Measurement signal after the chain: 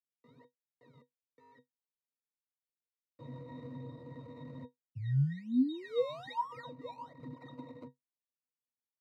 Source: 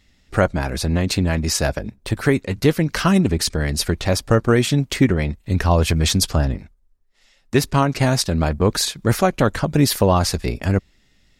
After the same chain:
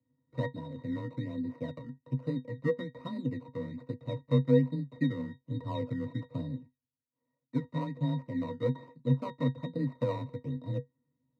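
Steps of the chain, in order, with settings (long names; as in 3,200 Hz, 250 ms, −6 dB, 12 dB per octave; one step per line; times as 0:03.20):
running median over 25 samples
sample-and-hold swept by an LFO 19×, swing 100% 1.2 Hz
high-pass filter 110 Hz 12 dB per octave
resonances in every octave A#, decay 0.13 s
frequency shifter +20 Hz
level −3.5 dB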